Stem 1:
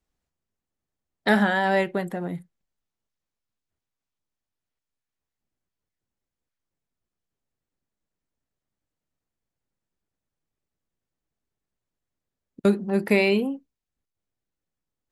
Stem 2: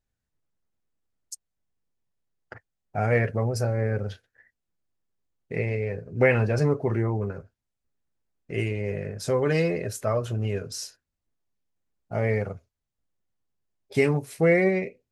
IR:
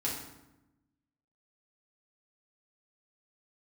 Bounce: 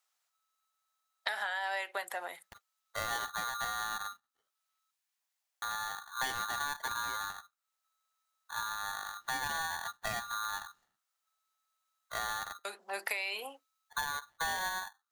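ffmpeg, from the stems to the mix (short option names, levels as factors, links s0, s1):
-filter_complex "[0:a]highpass=f=730:w=0.5412,highpass=f=730:w=1.3066,highshelf=f=2500:g=8,acompressor=threshold=0.0631:ratio=6,volume=1.06[s0];[1:a]adynamicsmooth=sensitivity=1:basefreq=530,aeval=exprs='val(0)*sgn(sin(2*PI*1300*n/s))':c=same,volume=0.376,asplit=3[s1][s2][s3];[s1]atrim=end=4.91,asetpts=PTS-STARTPTS,afade=t=out:st=4.906:d=0.004:c=hsin[s4];[s2]atrim=start=4.91:end=5.62,asetpts=PTS-STARTPTS,volume=0[s5];[s3]atrim=start=5.62,asetpts=PTS-STARTPTS,afade=t=in:d=0.004:c=hsin[s6];[s4][s5][s6]concat=n=3:v=0:a=1,asplit=2[s7][s8];[s8]apad=whole_len=666786[s9];[s0][s9]sidechaincompress=threshold=0.00398:ratio=10:attack=24:release=478[s10];[s10][s7]amix=inputs=2:normalize=0,lowshelf=f=210:g=9.5,acompressor=threshold=0.0251:ratio=6"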